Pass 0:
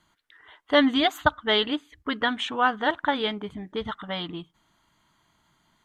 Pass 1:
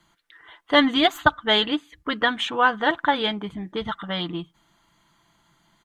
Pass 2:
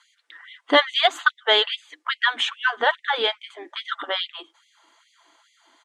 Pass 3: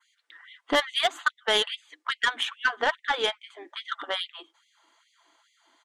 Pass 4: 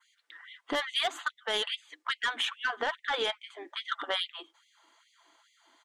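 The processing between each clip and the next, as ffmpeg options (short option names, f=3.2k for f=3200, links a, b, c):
-filter_complex "[0:a]aecho=1:1:5.9:0.37,acrossover=split=130|5400[a][b][c];[c]aeval=exprs='clip(val(0),-1,0.00596)':c=same[d];[a][b][d]amix=inputs=3:normalize=0,volume=3dB"
-filter_complex "[0:a]lowpass=f=9.4k:w=0.5412,lowpass=f=9.4k:w=1.3066,asplit=2[a][b];[b]acompressor=threshold=-28dB:ratio=6,volume=-0.5dB[c];[a][c]amix=inputs=2:normalize=0,afftfilt=real='re*gte(b*sr/1024,230*pow(2000/230,0.5+0.5*sin(2*PI*2.4*pts/sr)))':imag='im*gte(b*sr/1024,230*pow(2000/230,0.5+0.5*sin(2*PI*2.4*pts/sr)))':win_size=1024:overlap=0.75"
-af "aeval=exprs='0.841*(cos(1*acos(clip(val(0)/0.841,-1,1)))-cos(1*PI/2))+0.0266*(cos(5*acos(clip(val(0)/0.841,-1,1)))-cos(5*PI/2))+0.0841*(cos(7*acos(clip(val(0)/0.841,-1,1)))-cos(7*PI/2))':c=same,alimiter=limit=-12dB:level=0:latency=1:release=46,adynamicequalizer=threshold=0.01:dfrequency=4500:dqfactor=0.93:tfrequency=4500:tqfactor=0.93:attack=5:release=100:ratio=0.375:range=2.5:mode=cutabove:tftype=bell,volume=1.5dB"
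-af "alimiter=limit=-19dB:level=0:latency=1:release=12"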